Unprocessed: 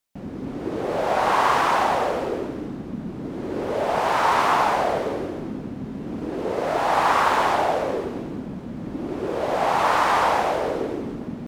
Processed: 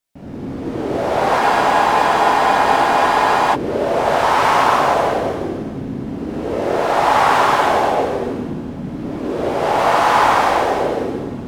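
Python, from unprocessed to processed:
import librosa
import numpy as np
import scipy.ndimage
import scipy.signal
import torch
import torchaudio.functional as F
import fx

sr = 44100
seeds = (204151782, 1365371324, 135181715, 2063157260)

y = fx.rev_gated(x, sr, seeds[0], gate_ms=360, shape='flat', drr_db=-7.0)
y = fx.spec_freeze(y, sr, seeds[1], at_s=1.42, hold_s=2.11)
y = y * librosa.db_to_amplitude(-2.0)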